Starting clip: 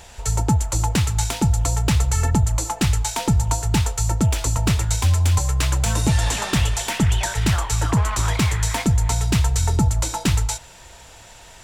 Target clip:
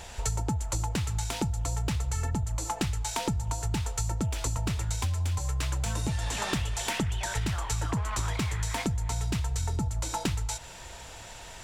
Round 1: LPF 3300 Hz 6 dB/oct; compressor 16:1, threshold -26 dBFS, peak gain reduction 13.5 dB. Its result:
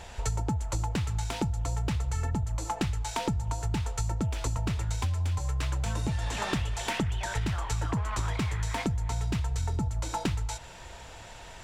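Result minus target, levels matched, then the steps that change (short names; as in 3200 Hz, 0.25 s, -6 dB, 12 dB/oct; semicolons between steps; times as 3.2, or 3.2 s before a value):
8000 Hz band -5.0 dB
change: LPF 11000 Hz 6 dB/oct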